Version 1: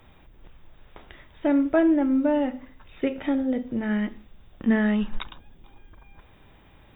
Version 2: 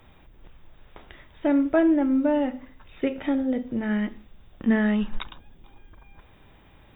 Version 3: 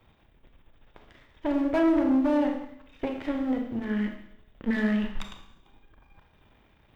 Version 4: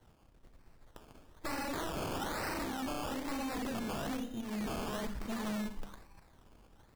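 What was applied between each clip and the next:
no processing that can be heard
gain on one half-wave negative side −12 dB; four-comb reverb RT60 0.88 s, combs from 27 ms, DRR 3.5 dB; harmonic generator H 6 −21 dB, 7 −31 dB, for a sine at −7 dBFS; level −3.5 dB
on a send: single-tap delay 617 ms −6 dB; on the sum: sample-and-hold swept by an LFO 18×, swing 60% 1.1 Hz; wave folding −30 dBFS; level −2.5 dB

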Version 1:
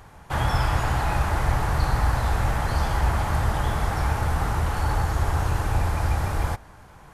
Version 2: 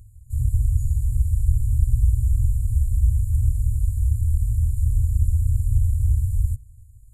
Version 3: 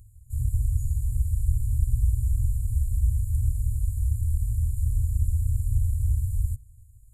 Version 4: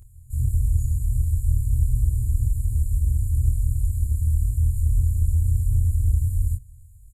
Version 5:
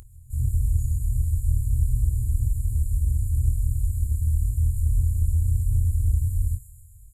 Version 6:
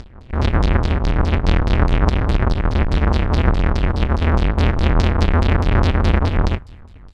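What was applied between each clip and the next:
low-shelf EQ 390 Hz +6.5 dB; brick-wall band-stop 120–6,800 Hz; level −1.5 dB
high-shelf EQ 6,300 Hz +5 dB; level −4.5 dB
in parallel at −9.5 dB: soft clipping −27 dBFS, distortion −8 dB; on the sum: double-tracking delay 24 ms −3 dB
delay with a high-pass on its return 129 ms, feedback 64%, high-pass 5,200 Hz, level −7.5 dB; upward compression, threshold −41 dBFS; level −1.5 dB
each half-wave held at its own peak; auto-filter low-pass saw down 4.8 Hz 960–5,400 Hz; level +2.5 dB

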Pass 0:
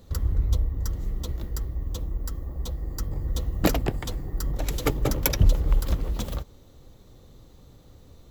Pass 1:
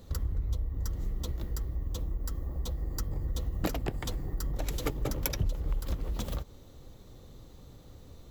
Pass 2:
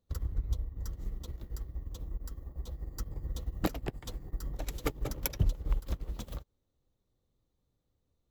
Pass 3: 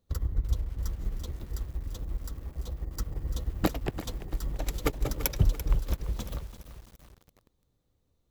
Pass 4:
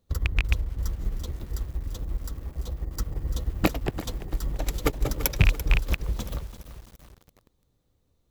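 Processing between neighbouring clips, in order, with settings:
downward compressor 3 to 1, threshold −30 dBFS, peak gain reduction 13.5 dB
expander for the loud parts 2.5 to 1, over −46 dBFS; level +4 dB
feedback echo at a low word length 339 ms, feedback 55%, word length 8 bits, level −12 dB; level +4.5 dB
loose part that buzzes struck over −21 dBFS, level −14 dBFS; level +3.5 dB

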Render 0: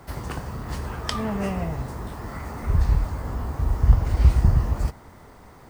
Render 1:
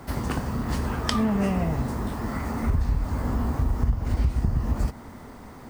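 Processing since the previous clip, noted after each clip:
parametric band 240 Hz +9 dB 0.45 octaves
downward compressor 8 to 1, threshold −22 dBFS, peak gain reduction 14 dB
level +3 dB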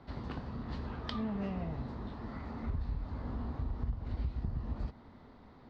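transistor ladder low-pass 4,500 Hz, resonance 60%
high-shelf EQ 2,200 Hz −10 dB
level −2 dB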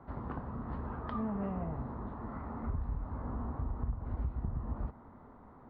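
low-pass with resonance 1,200 Hz, resonance Q 1.6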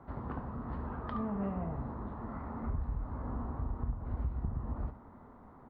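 single-tap delay 71 ms −12 dB

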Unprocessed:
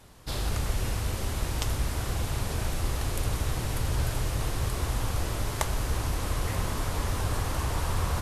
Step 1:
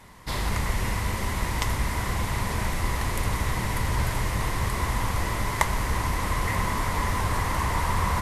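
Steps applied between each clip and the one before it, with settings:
thirty-one-band graphic EQ 200 Hz +7 dB, 1,000 Hz +11 dB, 2,000 Hz +12 dB
level +1.5 dB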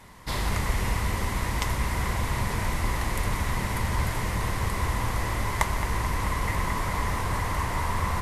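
speech leveller within 3 dB 2 s
bucket-brigade delay 218 ms, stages 4,096, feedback 85%, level −11 dB
level −2 dB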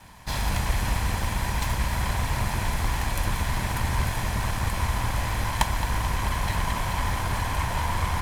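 lower of the sound and its delayed copy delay 1.2 ms
level +2 dB

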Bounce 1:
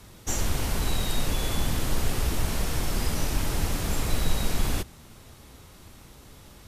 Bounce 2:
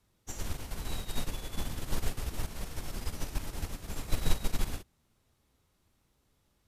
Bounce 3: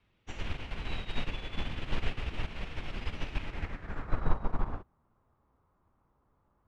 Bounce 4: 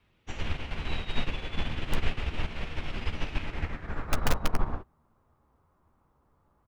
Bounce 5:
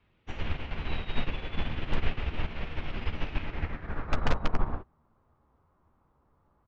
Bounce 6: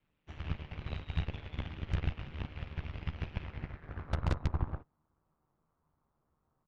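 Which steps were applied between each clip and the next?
expander for the loud parts 2.5 to 1, over −32 dBFS
low-pass filter sweep 2,700 Hz → 1,100 Hz, 0:03.40–0:04.36
in parallel at −3 dB: wrap-around overflow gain 17.5 dB; on the sum: double-tracking delay 13 ms −11.5 dB; level −1 dB
Gaussian smoothing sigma 1.8 samples
ring modulation 76 Hz; harmonic generator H 4 −11 dB, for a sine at −13 dBFS; level −7.5 dB

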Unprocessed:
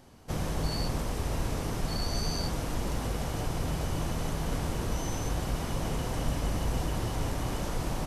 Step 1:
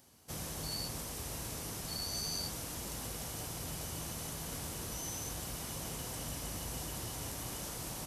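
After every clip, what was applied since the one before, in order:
high-pass filter 59 Hz
first-order pre-emphasis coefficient 0.8
level +2.5 dB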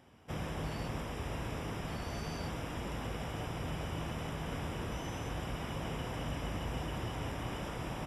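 Savitzky-Golay smoothing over 25 samples
level +5.5 dB

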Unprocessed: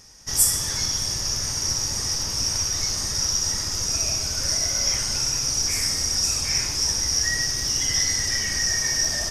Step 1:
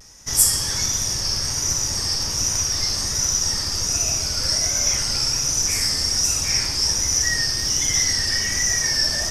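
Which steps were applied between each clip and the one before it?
pitch vibrato 1.3 Hz 71 cents
level +2.5 dB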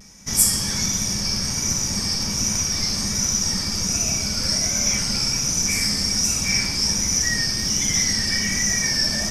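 hollow resonant body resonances 200/2,300 Hz, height 16 dB, ringing for 70 ms
level −1 dB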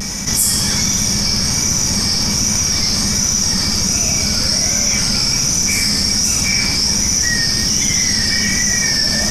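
envelope flattener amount 70%

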